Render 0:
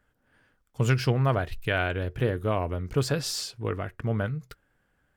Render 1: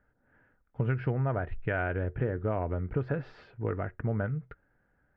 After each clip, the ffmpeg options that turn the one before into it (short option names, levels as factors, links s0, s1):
-af "lowpass=f=1900:w=0.5412,lowpass=f=1900:w=1.3066,bandreject=f=1100:w=8.2,acompressor=threshold=0.0501:ratio=4"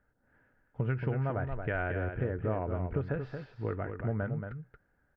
-af "aecho=1:1:228:0.447,volume=0.75"